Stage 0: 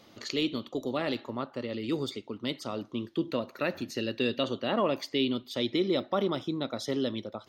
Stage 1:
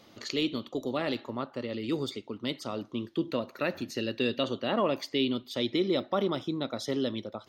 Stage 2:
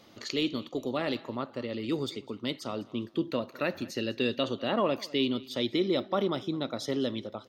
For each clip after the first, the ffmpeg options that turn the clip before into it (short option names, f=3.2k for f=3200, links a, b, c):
-af anull
-af "aecho=1:1:204|408:0.0794|0.0222"